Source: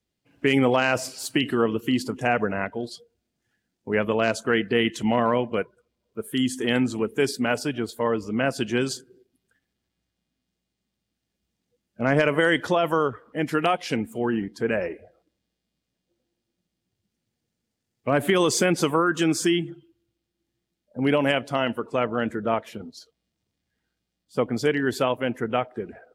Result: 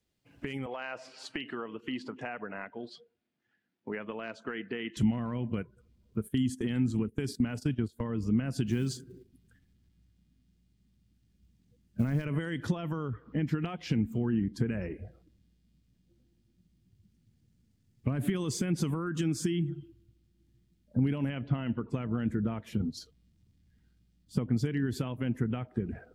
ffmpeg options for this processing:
-filter_complex "[0:a]asettb=1/sr,asplit=3[s0][s1][s2];[s0]atrim=end=0.664[s3];[s1]atrim=start=0.66:end=4.97,asetpts=PTS-STARTPTS,afade=t=in:d=0.004:c=qsin,afade=t=out:st=4.306:d=0.004:c=qsin,highpass=450,lowpass=2800[s4];[s2]atrim=start=4.966[s5];[s3][s4]acrossfade=d=0.004:c1=hsin:c2=qsin[s6];[s6][s5]acrossfade=d=0.004:c1=qsin:c2=hsin,asplit=3[s7][s8][s9];[s7]afade=t=out:st=6.27:d=0.02[s10];[s8]agate=range=0.178:threshold=0.0224:ratio=16:release=100:detection=peak,afade=t=in:st=6.27:d=0.02,afade=t=out:st=8.17:d=0.02[s11];[s9]afade=t=in:st=8.17:d=0.02[s12];[s10][s11][s12]amix=inputs=3:normalize=0,asettb=1/sr,asplit=3[s13][s14][s15];[s13]atrim=end=8.674[s16];[s14]atrim=start=8.67:end=12.25,asetpts=PTS-STARTPTS,afade=t=in:d=0.004:c=qsin,afade=t=out:st=3.576:d=0.004:c=qsin,acrusher=bits=6:mode=log:mix=0:aa=0.000001[s17];[s15]atrim=start=12.246[s18];[s16][s17]acrossfade=d=0.004:c1=hsin:c2=qsin[s19];[s19][s18]acrossfade=d=0.004:c1=qsin:c2=hsin,asettb=1/sr,asplit=3[s20][s21][s22];[s20]atrim=end=12.834[s23];[s21]atrim=start=12.83:end=14.28,asetpts=PTS-STARTPTS,afade=t=in:d=0.004:c=qsin,afade=t=out:st=1.446:d=0.004:c=qsin,equalizer=f=10000:w=1.5:g=-15[s24];[s22]atrim=start=14.276[s25];[s23][s24]acrossfade=d=0.004:c1=hsin:c2=qsin[s26];[s26][s25]acrossfade=d=0.004:c1=qsin:c2=hsin,asplit=3[s27][s28][s29];[s27]afade=t=out:st=21.28:d=0.02[s30];[s28]lowpass=f=3200:w=0.5412,lowpass=f=3200:w=1.3066,afade=t=in:st=21.28:d=0.02,afade=t=out:st=21.89:d=0.02[s31];[s29]afade=t=in:st=21.89:d=0.02[s32];[s30][s31][s32]amix=inputs=3:normalize=0,alimiter=limit=0.178:level=0:latency=1:release=69,acompressor=threshold=0.0158:ratio=4,asubboost=boost=9:cutoff=190"

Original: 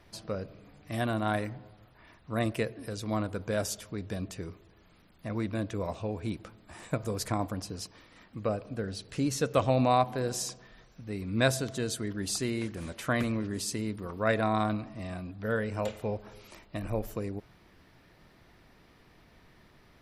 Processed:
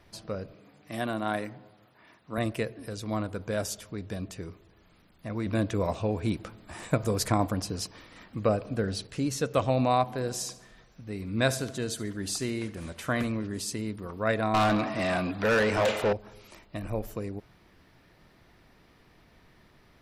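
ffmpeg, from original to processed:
-filter_complex "[0:a]asettb=1/sr,asplit=3[s0][s1][s2];[s0]atrim=end=0.544[s3];[s1]atrim=start=0.54:end=2.38,asetpts=PTS-STARTPTS,afade=t=in:d=0.004:c=qsin,afade=t=out:st=1.836:d=0.004:c=qsin,highpass=160[s4];[s2]atrim=start=2.376[s5];[s3][s4]acrossfade=d=0.004:c1=hsin:c2=qsin[s6];[s6][s5]acrossfade=d=0.004:c1=qsin:c2=hsin,asettb=1/sr,asplit=3[s7][s8][s9];[s7]atrim=end=5.464[s10];[s8]atrim=start=5.46:end=9.07,asetpts=PTS-STARTPTS,afade=t=in:d=0.004:c=qsin,afade=t=out:st=3.606:d=0.004:c=qsin,acontrast=38[s11];[s9]atrim=start=9.066[s12];[s10][s11]acrossfade=d=0.004:c1=hsin:c2=qsin[s13];[s13][s12]acrossfade=d=0.004:c1=qsin:c2=hsin,asettb=1/sr,asplit=3[s14][s15][s16];[s14]atrim=end=10.404[s17];[s15]atrim=start=10.4:end=13.27,asetpts=PTS-STARTPTS,afade=t=in:d=0.004:c=qsin,afade=t=out:st=2.866:d=0.004:c=qsin,aecho=1:1:72|144|216|288:0.141|0.0607|0.0261|0.0112,atrim=end_sample=126567[s18];[s16]atrim=start=13.266[s19];[s17][s18]acrossfade=d=0.004:c1=hsin:c2=qsin[s20];[s20][s19]acrossfade=d=0.004:c1=qsin:c2=hsin,asettb=1/sr,asplit=3[s21][s22][s23];[s21]atrim=end=14.544[s24];[s22]atrim=start=14.54:end=16.13,asetpts=PTS-STARTPTS,afade=t=in:d=0.004:c=qsin,afade=t=out:st=1.586:d=0.004:c=qsin,asplit=2[s25][s26];[s26]highpass=f=720:p=1,volume=22.4,asoftclip=type=tanh:threshold=0.158[s27];[s25][s27]amix=inputs=2:normalize=0,lowpass=f=3800:p=1,volume=0.501[s28];[s23]atrim=start=16.126[s29];[s24][s28]acrossfade=d=0.004:c1=hsin:c2=qsin[s30];[s30][s29]acrossfade=d=0.004:c1=qsin:c2=hsin"

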